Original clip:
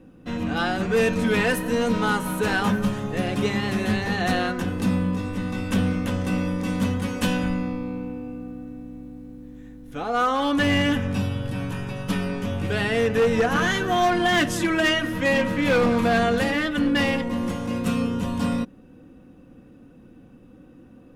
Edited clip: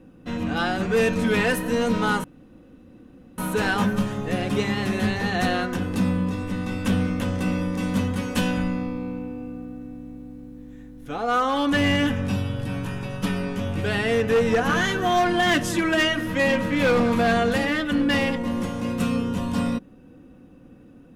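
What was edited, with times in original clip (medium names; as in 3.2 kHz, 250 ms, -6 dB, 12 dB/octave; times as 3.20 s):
2.24 s: insert room tone 1.14 s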